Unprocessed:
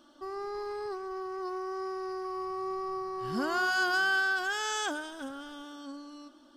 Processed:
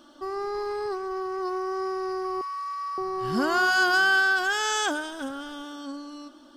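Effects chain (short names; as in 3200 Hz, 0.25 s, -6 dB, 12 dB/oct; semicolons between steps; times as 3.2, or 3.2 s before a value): 2.41–2.98 brick-wall FIR high-pass 850 Hz; gain +6.5 dB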